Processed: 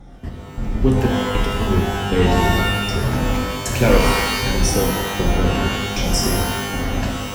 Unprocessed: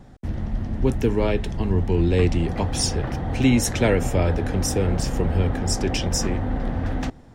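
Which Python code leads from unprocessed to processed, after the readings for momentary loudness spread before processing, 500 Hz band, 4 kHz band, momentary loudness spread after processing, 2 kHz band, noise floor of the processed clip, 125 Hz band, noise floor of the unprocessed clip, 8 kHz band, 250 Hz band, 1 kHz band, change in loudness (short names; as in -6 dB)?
8 LU, +3.5 dB, +7.5 dB, 7 LU, +9.0 dB, -34 dBFS, +2.0 dB, -45 dBFS, +3.0 dB, +2.5 dB, +9.5 dB, +4.0 dB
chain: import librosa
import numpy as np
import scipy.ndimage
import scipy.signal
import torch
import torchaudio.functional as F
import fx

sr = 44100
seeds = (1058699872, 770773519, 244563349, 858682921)

y = fx.spec_ripple(x, sr, per_octave=1.4, drift_hz=-1.5, depth_db=9)
y = fx.step_gate(y, sr, bpm=156, pattern='xxx...xx', floor_db=-60.0, edge_ms=4.5)
y = fx.rev_shimmer(y, sr, seeds[0], rt60_s=1.1, semitones=12, shimmer_db=-2, drr_db=0.0)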